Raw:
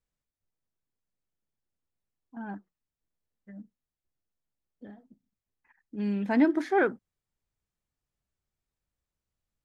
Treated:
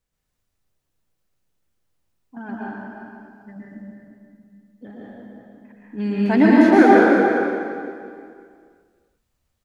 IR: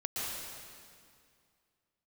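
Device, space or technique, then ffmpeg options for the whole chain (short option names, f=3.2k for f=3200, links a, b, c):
stairwell: -filter_complex "[0:a]asettb=1/sr,asplit=3[a][b][c];[a]atrim=end=2.384[d];[b]atrim=start=2.38:end=3.56,asetpts=PTS-STARTPTS,afade=t=in:d=0.004:c=qsin,afade=t=out:st=1.176:d=0.004:c=qsin,equalizer=f=200:t=o:w=0.33:g=-6,equalizer=f=800:t=o:w=0.33:g=-5,equalizer=f=5k:t=o:w=0.33:g=8[e];[c]atrim=start=3.556[f];[d][e]acrossfade=d=0.004:c1=hsin:c2=qsin[g];[g][f]acrossfade=d=0.004:c1=qsin:c2=hsin[h];[1:a]atrim=start_sample=2205[i];[h][i]afir=irnorm=-1:irlink=0,asplit=2[j][k];[k]adelay=349.9,volume=-9dB,highshelf=f=4k:g=-7.87[l];[j][l]amix=inputs=2:normalize=0,volume=8.5dB"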